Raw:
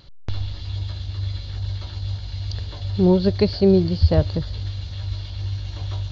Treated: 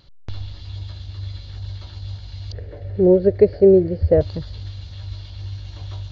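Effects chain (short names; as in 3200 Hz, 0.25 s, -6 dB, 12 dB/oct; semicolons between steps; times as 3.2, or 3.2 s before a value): 2.52–4.21 EQ curve 230 Hz 0 dB, 500 Hz +15 dB, 1000 Hz -9 dB, 1900 Hz +3 dB, 3400 Hz -17 dB; gain -4 dB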